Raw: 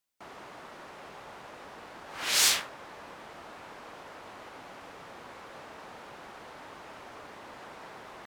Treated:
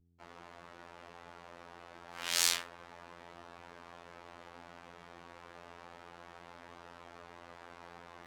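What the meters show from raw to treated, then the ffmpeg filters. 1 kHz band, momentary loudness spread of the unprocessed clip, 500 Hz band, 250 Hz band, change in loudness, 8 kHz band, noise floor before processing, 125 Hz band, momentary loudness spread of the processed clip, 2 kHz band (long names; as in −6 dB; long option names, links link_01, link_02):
−6.5 dB, 21 LU, −6.5 dB, −6.0 dB, −6.5 dB, −6.0 dB, −48 dBFS, −3.5 dB, 21 LU, −6.5 dB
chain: -af "areverse,acompressor=mode=upward:threshold=-49dB:ratio=2.5,areverse,flanger=delay=0.2:depth=5.3:regen=-83:speed=0.29:shape=sinusoidal,aeval=exprs='val(0)+0.000794*(sin(2*PI*60*n/s)+sin(2*PI*2*60*n/s)/2+sin(2*PI*3*60*n/s)/3+sin(2*PI*4*60*n/s)/4+sin(2*PI*5*60*n/s)/5)':channel_layout=same,anlmdn=0.0001,afftfilt=real='hypot(re,im)*cos(PI*b)':imag='0':win_size=2048:overlap=0.75,volume=1.5dB"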